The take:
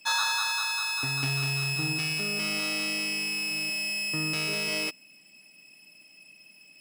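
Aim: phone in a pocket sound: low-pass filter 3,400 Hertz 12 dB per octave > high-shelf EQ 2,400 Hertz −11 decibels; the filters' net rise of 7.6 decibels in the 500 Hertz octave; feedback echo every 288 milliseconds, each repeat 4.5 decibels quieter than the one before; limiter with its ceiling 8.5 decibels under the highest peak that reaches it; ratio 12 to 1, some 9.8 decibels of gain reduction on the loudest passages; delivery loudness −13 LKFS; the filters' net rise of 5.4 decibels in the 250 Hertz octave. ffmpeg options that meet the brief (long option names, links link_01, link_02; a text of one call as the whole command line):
ffmpeg -i in.wav -af "equalizer=frequency=250:width_type=o:gain=5,equalizer=frequency=500:width_type=o:gain=9,acompressor=threshold=-32dB:ratio=12,alimiter=level_in=4.5dB:limit=-24dB:level=0:latency=1,volume=-4.5dB,lowpass=3400,highshelf=frequency=2400:gain=-11,aecho=1:1:288|576|864|1152|1440|1728|2016|2304|2592:0.596|0.357|0.214|0.129|0.0772|0.0463|0.0278|0.0167|0.01,volume=28dB" out.wav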